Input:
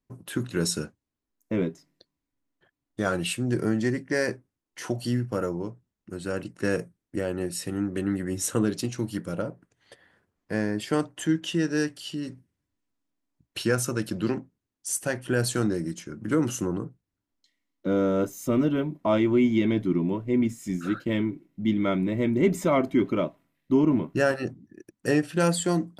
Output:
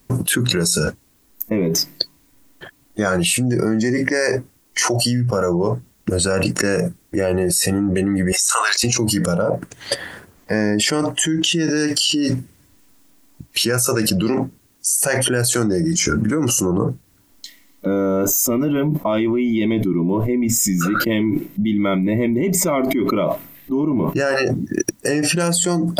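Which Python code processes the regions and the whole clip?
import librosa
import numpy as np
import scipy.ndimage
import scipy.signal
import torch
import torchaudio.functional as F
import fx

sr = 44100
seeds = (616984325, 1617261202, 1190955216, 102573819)

y = fx.chain(x, sr, fx.highpass(hz=880.0, slope=24),
    fx.over_compress(threshold_db=-38.0, ratio=-1.0), at=(8.32, 8.84))
y = fx.noise_reduce_blind(y, sr, reduce_db=12)
y = fx.high_shelf(y, sr, hz=6300.0, db=10.0)
y = fx.env_flatten(y, sr, amount_pct=100)
y = y * 10.0 ** (-1.0 / 20.0)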